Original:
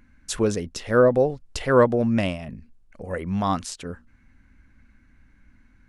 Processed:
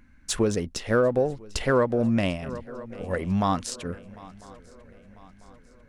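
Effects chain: in parallel at -9.5 dB: backlash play -23.5 dBFS; on the sum: swung echo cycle 0.996 s, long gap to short 3:1, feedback 45%, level -23.5 dB; compressor 4:1, threshold -19 dBFS, peak gain reduction 9 dB

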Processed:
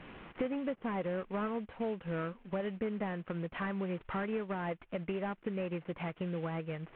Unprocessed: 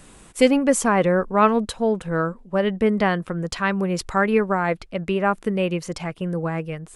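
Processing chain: CVSD 16 kbps; low shelf 69 Hz -10.5 dB; compressor 4:1, threshold -36 dBFS, peak gain reduction 19 dB

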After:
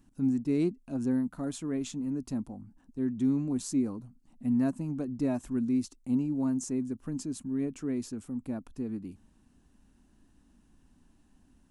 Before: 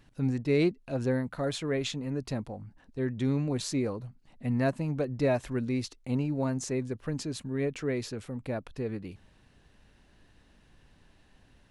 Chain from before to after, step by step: graphic EQ 125/250/500/2000/4000/8000 Hz -7/+10/-11/-10/-9/+5 dB; gain -2 dB

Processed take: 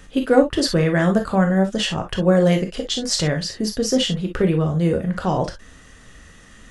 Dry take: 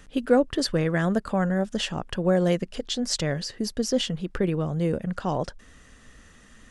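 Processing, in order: non-linear reverb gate 80 ms flat, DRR 3.5 dB; gain +4.5 dB

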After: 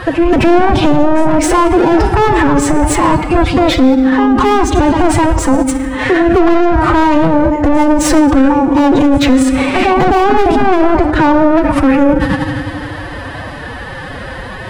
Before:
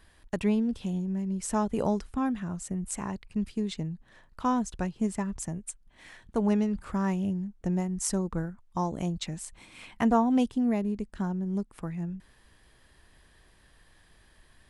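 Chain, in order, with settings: tilt -2 dB/oct; pre-echo 0.26 s -19 dB; overdrive pedal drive 37 dB, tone 1100 Hz, clips at -9.5 dBFS; on a send at -8 dB: reverb RT60 2.0 s, pre-delay 3 ms; on the sum: formant-preserving pitch shift +8.5 st; maximiser +14.5 dB; gain -1 dB

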